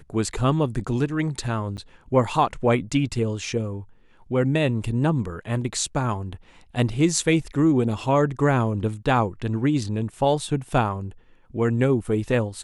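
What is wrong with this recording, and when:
1.77–1.78 s: dropout 9 ms

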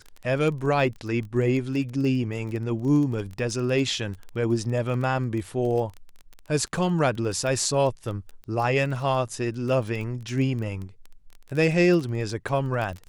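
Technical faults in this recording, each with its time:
crackle 17 per s -30 dBFS

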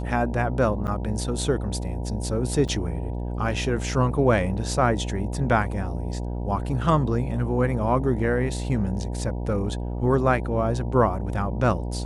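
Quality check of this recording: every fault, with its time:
buzz 60 Hz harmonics 16 -29 dBFS
0.87–0.88 s: dropout 8.1 ms
2.68–2.69 s: dropout 6.1 ms

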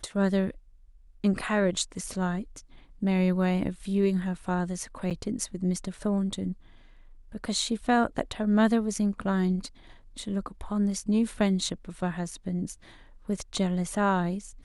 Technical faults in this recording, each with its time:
5.10–5.11 s: dropout 7.5 ms

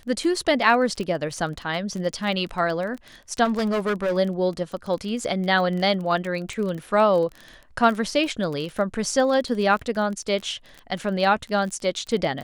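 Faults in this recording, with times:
crackle 26 per s -29 dBFS
3.44–4.17 s: clipped -19.5 dBFS

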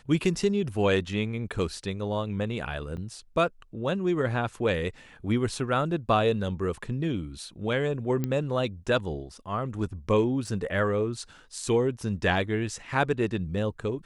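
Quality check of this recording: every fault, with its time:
2.97–2.98 s: dropout 6.6 ms
8.24 s: pop -16 dBFS
10.47 s: dropout 2.2 ms

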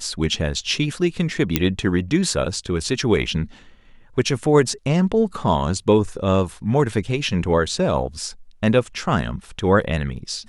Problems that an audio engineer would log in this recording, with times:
1.56 s: pop -1 dBFS

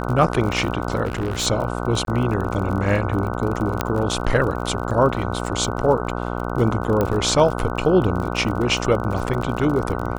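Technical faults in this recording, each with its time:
buzz 60 Hz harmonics 25 -26 dBFS
crackle 43 per s -27 dBFS
1.05–1.47 s: clipped -19.5 dBFS
2.05–2.07 s: dropout 22 ms
3.81 s: pop -5 dBFS
7.01 s: pop -9 dBFS

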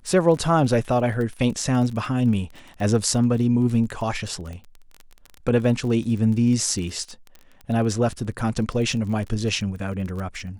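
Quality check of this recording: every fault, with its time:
crackle 23 per s -30 dBFS

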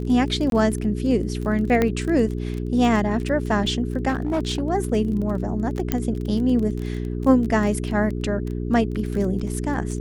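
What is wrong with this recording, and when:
crackle 17 per s -27 dBFS
hum 60 Hz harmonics 7 -27 dBFS
0.50–0.52 s: dropout 22 ms
1.82 s: pop -8 dBFS
4.08–4.61 s: clipped -18 dBFS
5.92 s: pop -7 dBFS

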